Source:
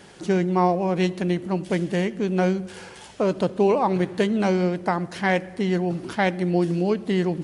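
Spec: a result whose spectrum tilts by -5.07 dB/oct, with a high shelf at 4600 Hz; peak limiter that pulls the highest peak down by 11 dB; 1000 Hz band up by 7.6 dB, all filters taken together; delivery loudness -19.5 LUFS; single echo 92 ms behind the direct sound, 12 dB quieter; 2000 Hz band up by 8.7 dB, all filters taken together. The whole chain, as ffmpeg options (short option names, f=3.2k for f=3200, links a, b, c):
-af "equalizer=f=1k:t=o:g=8.5,equalizer=f=2k:t=o:g=7,highshelf=f=4.6k:g=4.5,alimiter=limit=-12dB:level=0:latency=1,aecho=1:1:92:0.251,volume=4dB"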